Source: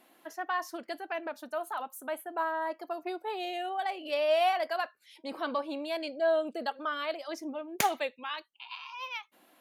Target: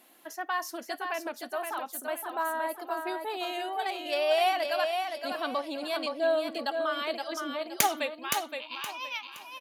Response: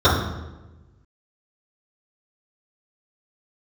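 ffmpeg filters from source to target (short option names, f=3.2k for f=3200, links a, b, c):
-filter_complex "[0:a]highshelf=f=3.7k:g=8.5,asplit=2[a][b];[b]aecho=0:1:519|1038|1557|2076:0.531|0.154|0.0446|0.0129[c];[a][c]amix=inputs=2:normalize=0"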